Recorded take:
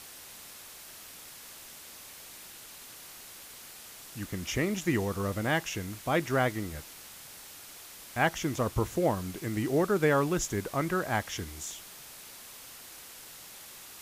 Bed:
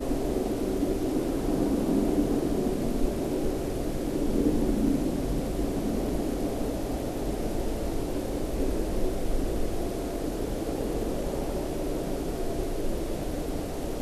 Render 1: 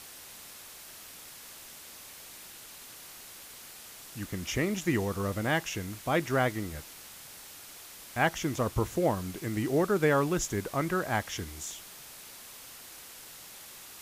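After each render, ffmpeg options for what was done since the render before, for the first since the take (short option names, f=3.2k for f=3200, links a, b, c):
-af anull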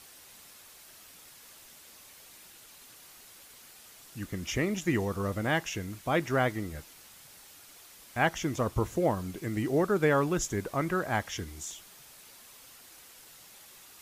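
-af "afftdn=nr=6:nf=-48"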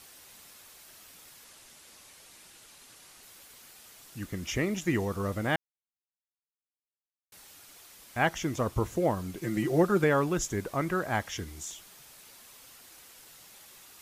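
-filter_complex "[0:a]asettb=1/sr,asplit=3[a][b][c];[a]atrim=end=1.444[d];[b]atrim=start=1.44:end=3.23,asetpts=PTS-STARTPTS,afade=t=in:d=0.004:c=qsin,afade=t=out:st=1.786:d=0.004:c=qsin,lowpass=f=12k:w=0.5412,lowpass=f=12k:w=1.3066[e];[c]atrim=start=3.226[f];[d][e]acrossfade=d=0.004:c1=hsin:c2=qsin[g];[g][f]acrossfade=d=0.004:c1=qsin:c2=hsin,asettb=1/sr,asplit=3[h][i][j];[h]atrim=end=9.414[k];[i]atrim=start=9.41:end=10.04,asetpts=PTS-STARTPTS,afade=t=in:d=0.004:c=qsin,afade=t=out:st=0.626:d=0.004:c=qsin,aecho=1:1:5.7:0.75,atrim=end_sample=27783[l];[j]atrim=start=10.036[m];[k][l]acrossfade=d=0.004:c1=hsin:c2=qsin[n];[n][m]acrossfade=d=0.004:c1=qsin:c2=hsin,asplit=3[o][p][q];[o]atrim=end=5.56,asetpts=PTS-STARTPTS,afade=t=out:st=5.556:d=0.004:c=hsin[r];[p]atrim=start=5.56:end=7.32,asetpts=PTS-STARTPTS,volume=0[s];[q]atrim=start=7.32,asetpts=PTS-STARTPTS,afade=t=in:d=0.004:c=hsin[t];[r][s][t]concat=n=3:v=0:a=1"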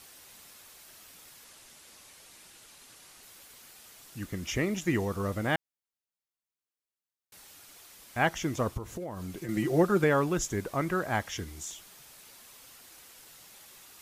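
-filter_complex "[0:a]asettb=1/sr,asplit=3[a][b][c];[a]atrim=end=8.774[d];[b]atrim=start=8.77:end=9.49,asetpts=PTS-STARTPTS,afade=t=in:d=0.004:c=qsin,afade=t=out:st=0.716:d=0.004:c=qsin,acompressor=threshold=-34dB:ratio=8:attack=3.2:release=140:knee=1:detection=peak[e];[c]atrim=start=9.486[f];[d][e]acrossfade=d=0.004:c1=hsin:c2=qsin[g];[g][f]acrossfade=d=0.004:c1=qsin:c2=hsin"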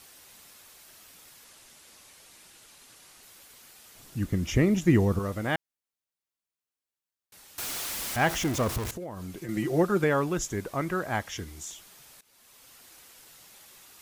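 -filter_complex "[0:a]asettb=1/sr,asplit=3[a][b][c];[a]atrim=end=3.954[d];[b]atrim=start=3.95:end=5.19,asetpts=PTS-STARTPTS,afade=t=in:d=0.004:c=qsin,afade=t=out:st=1.236:d=0.004:c=qsin,lowshelf=f=400:g=11[e];[c]atrim=start=5.186[f];[d][e]acrossfade=d=0.004:c1=hsin:c2=qsin[g];[g][f]acrossfade=d=0.004:c1=qsin:c2=hsin,asettb=1/sr,asplit=3[h][i][j];[h]atrim=end=7.584[k];[i]atrim=start=7.58:end=8.91,asetpts=PTS-STARTPTS,afade=t=in:d=0.004:c=qsin,afade=t=out:st=1.326:d=0.004:c=qsin,aeval=exprs='val(0)+0.5*0.0355*sgn(val(0))':c=same[l];[j]atrim=start=8.906[m];[k][l]acrossfade=d=0.004:c1=hsin:c2=qsin[n];[n][m]acrossfade=d=0.004:c1=qsin:c2=hsin,asplit=2[o][p];[o]atrim=end=12.21,asetpts=PTS-STARTPTS,afade=t=out:st=12.206:d=0.004:c=hsin:silence=0.11885[q];[p]atrim=start=12.21,asetpts=PTS-STARTPTS,afade=t=in:d=0.74:c=qsin:silence=0.11885[r];[q][r]concat=n=2:v=0:a=1"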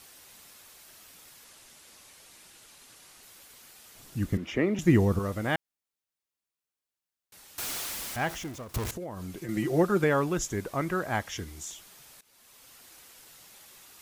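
-filter_complex "[0:a]asettb=1/sr,asplit=3[a][b][c];[a]atrim=end=4.374[d];[b]atrim=start=4.37:end=4.79,asetpts=PTS-STARTPTS,afade=t=in:d=0.004:c=qsin,afade=t=out:st=0.416:d=0.004:c=qsin,acrossover=split=220 3500:gain=0.112 1 0.158[e][f][g];[e][f][g]amix=inputs=3:normalize=0[h];[c]atrim=start=4.786[i];[d][h]acrossfade=d=0.004:c1=hsin:c2=qsin[j];[j][i]acrossfade=d=0.004:c1=qsin:c2=hsin,asplit=2[k][l];[k]atrim=end=8.74,asetpts=PTS-STARTPTS,afade=t=out:st=7.71:d=1.03:silence=0.0749894[m];[l]atrim=start=8.74,asetpts=PTS-STARTPTS,afade=t=in:d=0.004:c=hsin:silence=0.0749894[n];[m][n]concat=n=2:v=0:a=1"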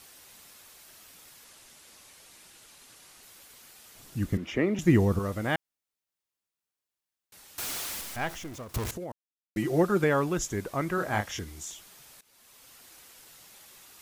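-filter_complex "[0:a]asettb=1/sr,asplit=3[a][b][c];[a]atrim=end=8.014[d];[b]atrim=start=8.01:end=8.52,asetpts=PTS-STARTPTS,afade=t=in:d=0.004:c=qsin,afade=t=out:st=0.506:d=0.004:c=qsin,aeval=exprs='if(lt(val(0),0),0.447*val(0),val(0))':c=same[e];[c]atrim=start=8.516[f];[d][e]acrossfade=d=0.004:c1=hsin:c2=qsin[g];[g][f]acrossfade=d=0.004:c1=qsin:c2=hsin,asettb=1/sr,asplit=3[h][i][j];[h]atrim=end=10.954[k];[i]atrim=start=10.95:end=11.39,asetpts=PTS-STARTPTS,afade=t=in:d=0.004:c=qsin,afade=t=out:st=0.436:d=0.004:c=qsin,asplit=2[l][m];[m]adelay=29,volume=-5.5dB[n];[l][n]amix=inputs=2:normalize=0,atrim=end_sample=19404[o];[j]atrim=start=11.386[p];[k][o]acrossfade=d=0.004:c1=hsin:c2=qsin[q];[q][p]acrossfade=d=0.004:c1=qsin:c2=hsin,asplit=3[r][s][t];[r]atrim=end=9.12,asetpts=PTS-STARTPTS,afade=t=out:st=9.116:d=0.004:c=hsin[u];[s]atrim=start=9.12:end=9.56,asetpts=PTS-STARTPTS,volume=0[v];[t]atrim=start=9.56,asetpts=PTS-STARTPTS,afade=t=in:d=0.004:c=hsin[w];[u][v][w]concat=n=3:v=0:a=1"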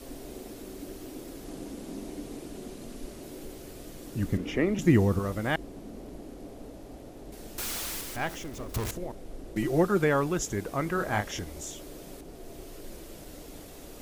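-filter_complex "[1:a]volume=-14.5dB[a];[0:a][a]amix=inputs=2:normalize=0"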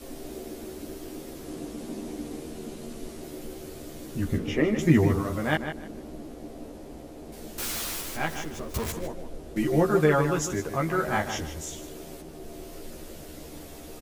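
-filter_complex "[0:a]asplit=2[a][b];[b]adelay=13,volume=-2dB[c];[a][c]amix=inputs=2:normalize=0,asplit=2[d][e];[e]adelay=153,lowpass=f=4.9k:p=1,volume=-8.5dB,asplit=2[f][g];[g]adelay=153,lowpass=f=4.9k:p=1,volume=0.24,asplit=2[h][i];[i]adelay=153,lowpass=f=4.9k:p=1,volume=0.24[j];[d][f][h][j]amix=inputs=4:normalize=0"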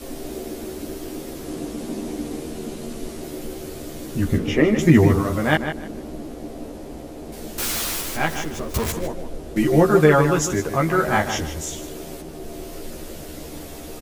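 -af "volume=7dB,alimiter=limit=-2dB:level=0:latency=1"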